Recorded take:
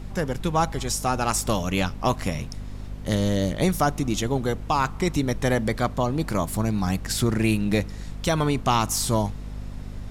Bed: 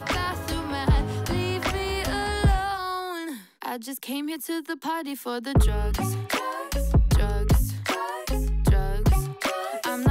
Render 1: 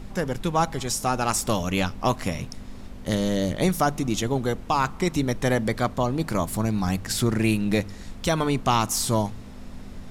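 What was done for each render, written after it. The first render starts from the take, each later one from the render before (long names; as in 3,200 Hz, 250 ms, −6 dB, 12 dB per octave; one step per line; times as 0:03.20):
mains-hum notches 50/100/150 Hz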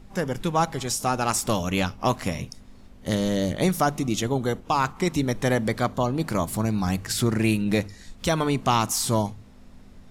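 noise reduction from a noise print 9 dB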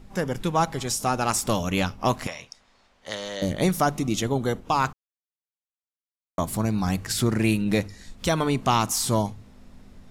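0:02.27–0:03.42: three-way crossover with the lows and the highs turned down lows −20 dB, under 570 Hz, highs −18 dB, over 7,500 Hz
0:04.93–0:06.38: silence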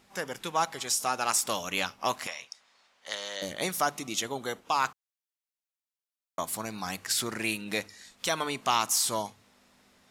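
high-pass filter 1,200 Hz 6 dB per octave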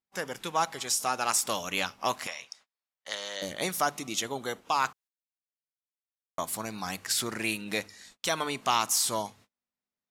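noise gate −54 dBFS, range −34 dB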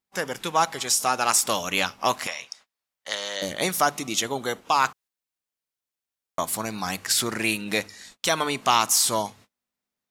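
level +6 dB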